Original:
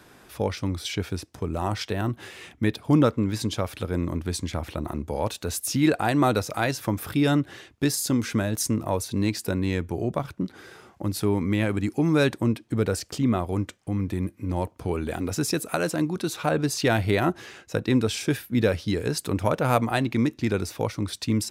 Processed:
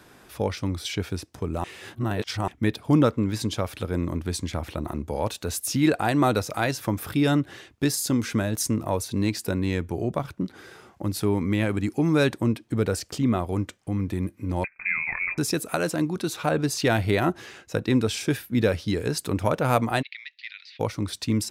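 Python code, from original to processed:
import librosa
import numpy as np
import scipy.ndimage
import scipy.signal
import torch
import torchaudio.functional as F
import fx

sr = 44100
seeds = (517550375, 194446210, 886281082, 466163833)

y = fx.freq_invert(x, sr, carrier_hz=2500, at=(14.64, 15.38))
y = fx.ellip_bandpass(y, sr, low_hz=1900.0, high_hz=4400.0, order=3, stop_db=80, at=(20.01, 20.79), fade=0.02)
y = fx.edit(y, sr, fx.reverse_span(start_s=1.64, length_s=0.84), tone=tone)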